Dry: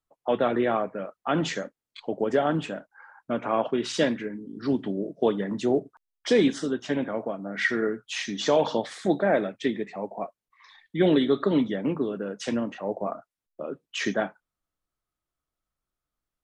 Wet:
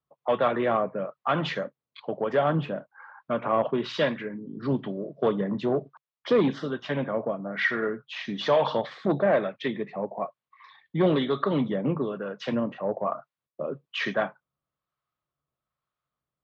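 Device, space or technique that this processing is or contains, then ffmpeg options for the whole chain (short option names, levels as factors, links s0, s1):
guitar amplifier with harmonic tremolo: -filter_complex "[0:a]acrossover=split=670[s0][s1];[s0]aeval=exprs='val(0)*(1-0.5/2+0.5/2*cos(2*PI*1.1*n/s))':c=same[s2];[s1]aeval=exprs='val(0)*(1-0.5/2-0.5/2*cos(2*PI*1.1*n/s))':c=same[s3];[s2][s3]amix=inputs=2:normalize=0,asoftclip=type=tanh:threshold=0.141,highpass=79,equalizer=f=140:t=q:w=4:g=9,equalizer=f=300:t=q:w=4:g=-4,equalizer=f=570:t=q:w=4:g=4,equalizer=f=1100:t=q:w=4:g=7,lowpass=f=4100:w=0.5412,lowpass=f=4100:w=1.3066,volume=1.26"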